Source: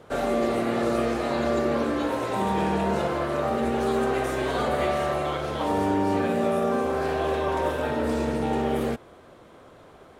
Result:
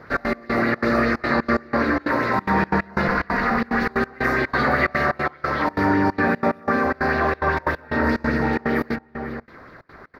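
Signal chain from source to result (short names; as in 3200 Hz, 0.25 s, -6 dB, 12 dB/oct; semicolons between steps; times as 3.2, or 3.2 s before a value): 3.08–3.9 minimum comb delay 4.1 ms; EQ curve 270 Hz 0 dB, 420 Hz -5 dB, 760 Hz -7 dB, 1900 Hz +8 dB, 3200 Hz -16 dB, 4600 Hz +3 dB, 8200 Hz -22 dB, 14000 Hz -4 dB; outdoor echo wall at 85 m, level -9 dB; step gate "xx.x..xxx.xxxx." 182 bpm -24 dB; LFO bell 5.1 Hz 720–3700 Hz +7 dB; gain +6 dB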